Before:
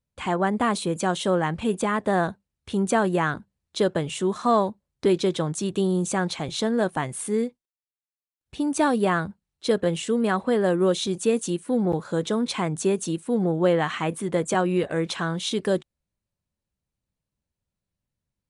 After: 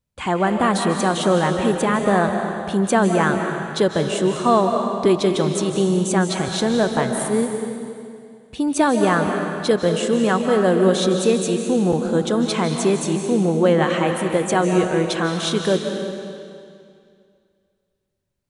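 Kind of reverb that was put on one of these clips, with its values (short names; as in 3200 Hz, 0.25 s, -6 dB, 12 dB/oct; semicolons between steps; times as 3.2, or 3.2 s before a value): digital reverb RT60 2.3 s, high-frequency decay 0.95×, pre-delay 0.115 s, DRR 4 dB; gain +4 dB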